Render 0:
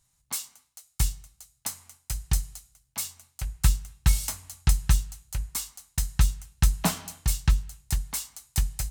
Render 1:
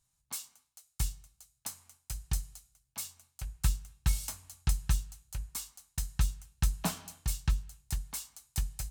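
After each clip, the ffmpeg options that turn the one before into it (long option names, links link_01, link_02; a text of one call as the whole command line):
ffmpeg -i in.wav -af "bandreject=frequency=2000:width=14,volume=-7.5dB" out.wav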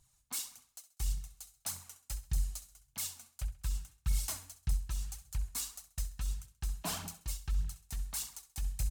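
ffmpeg -i in.wav -af "areverse,acompressor=threshold=-41dB:ratio=5,areverse,aphaser=in_gain=1:out_gain=1:delay=4.5:decay=0.56:speed=1.7:type=triangular,aecho=1:1:66|132|198:0.188|0.0697|0.0258,volume=4.5dB" out.wav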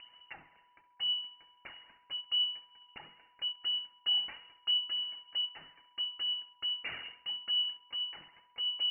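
ffmpeg -i in.wav -af "acompressor=mode=upward:threshold=-39dB:ratio=2.5,lowpass=frequency=2600:width_type=q:width=0.5098,lowpass=frequency=2600:width_type=q:width=0.6013,lowpass=frequency=2600:width_type=q:width=0.9,lowpass=frequency=2600:width_type=q:width=2.563,afreqshift=-3000,aeval=exprs='val(0)+0.000562*sin(2*PI*980*n/s)':channel_layout=same" out.wav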